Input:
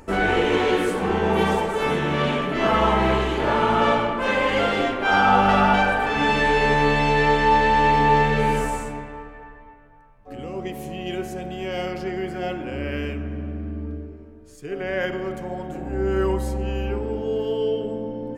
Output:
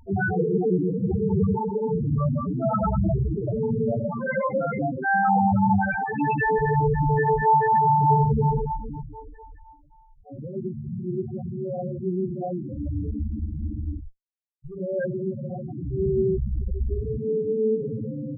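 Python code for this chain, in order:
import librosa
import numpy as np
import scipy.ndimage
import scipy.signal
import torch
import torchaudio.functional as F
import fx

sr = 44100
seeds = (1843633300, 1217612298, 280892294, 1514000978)

y = fx.octave_divider(x, sr, octaves=1, level_db=-2.0)
y = fx.env_lowpass(y, sr, base_hz=1300.0, full_db=-15.0)
y = fx.band_shelf(y, sr, hz=2400.0, db=-12.5, octaves=2.8, at=(3.24, 4.09))
y = fx.schmitt(y, sr, flips_db=-29.0, at=(13.99, 14.77))
y = fx.dynamic_eq(y, sr, hz=160.0, q=1.1, threshold_db=-38.0, ratio=4.0, max_db=5)
y = fx.spec_topn(y, sr, count=4)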